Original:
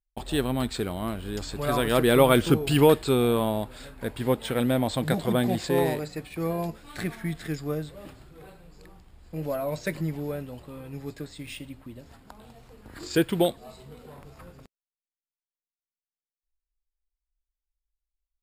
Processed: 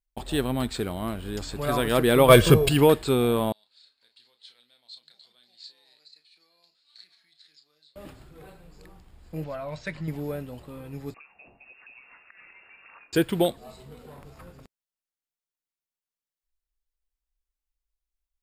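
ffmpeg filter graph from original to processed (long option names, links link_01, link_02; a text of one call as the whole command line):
ffmpeg -i in.wav -filter_complex "[0:a]asettb=1/sr,asplit=3[link_01][link_02][link_03];[link_01]atrim=end=2.284[link_04];[link_02]atrim=start=2.28:end=2.69,asetpts=PTS-STARTPTS,afade=type=in:duration=0.004:curve=qsin,afade=type=out:start_time=0.406:duration=0.004:curve=qsin,aecho=1:1:1.8:0.62,atrim=end_sample=18081,acontrast=68[link_05];[link_03]atrim=start=2.686[link_06];[link_04][link_05]acrossfade=duration=0.004:curve1=hsin:curve2=qsin[link_07];[link_07][link_06]acrossfade=duration=0.004:curve1=qsin:curve2=hsin,asettb=1/sr,asplit=3[link_08][link_09][link_10];[link_08]atrim=end=3.524[link_11];[link_09]atrim=start=3.52:end=7.96,asetpts=PTS-STARTPTS,afade=type=in:duration=0.004:curve=qsin,afade=type=out:start_time=4.436:duration=0.004:curve=qsin,acompressor=threshold=-29dB:ratio=4:attack=3.2:release=140:knee=1:detection=peak,bandpass=frequency=4300:width_type=q:width=9.5,asplit=2[link_12][link_13];[link_13]adelay=33,volume=-8dB[link_14];[link_12][link_14]amix=inputs=2:normalize=0,atrim=end_sample=195804[link_15];[link_10]atrim=start=7.956[link_16];[link_11][link_15]acrossfade=duration=0.004:curve1=hsin:curve2=qsin[link_17];[link_17][link_16]acrossfade=duration=0.004:curve1=qsin:curve2=hsin,asettb=1/sr,asplit=3[link_18][link_19][link_20];[link_18]atrim=end=9.444[link_21];[link_19]atrim=start=9.44:end=10.08,asetpts=PTS-STARTPTS,afade=type=in:duration=0.004:curve=qsin,afade=type=out:start_time=0.636:duration=0.004:curve=qsin,lowpass=4600,equalizer=frequency=350:width_type=o:width=1.7:gain=-10.5[link_22];[link_20]atrim=start=10.076[link_23];[link_21][link_22]acrossfade=duration=0.004:curve1=hsin:curve2=qsin[link_24];[link_24][link_23]acrossfade=duration=0.004:curve1=qsin:curve2=hsin,asettb=1/sr,asplit=3[link_25][link_26][link_27];[link_25]atrim=end=11.144[link_28];[link_26]atrim=start=11.14:end=13.13,asetpts=PTS-STARTPTS,afade=type=in:duration=0.004:curve=qsin,afade=type=out:start_time=1.986:duration=0.004:curve=qsin,tiltshelf=frequency=640:gain=-5.5,acompressor=threshold=-45dB:ratio=16:attack=3.2:release=140:knee=1:detection=peak,lowpass=frequency=2400:width_type=q:width=0.5098,lowpass=frequency=2400:width_type=q:width=0.6013,lowpass=frequency=2400:width_type=q:width=0.9,lowpass=frequency=2400:width_type=q:width=2.563,afreqshift=-2800[link_29];[link_27]atrim=start=13.126[link_30];[link_28][link_29]acrossfade=duration=0.004:curve1=hsin:curve2=qsin[link_31];[link_31][link_30]acrossfade=duration=0.004:curve1=qsin:curve2=hsin" out.wav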